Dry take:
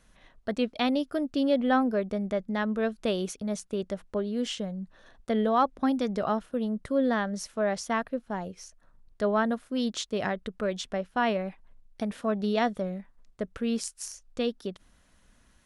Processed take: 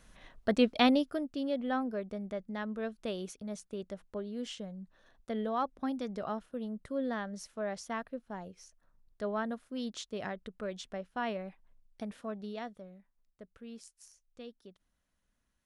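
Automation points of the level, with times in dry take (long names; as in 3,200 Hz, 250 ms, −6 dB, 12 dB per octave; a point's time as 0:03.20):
0:00.86 +2 dB
0:01.33 −9 dB
0:12.09 −9 dB
0:12.88 −18.5 dB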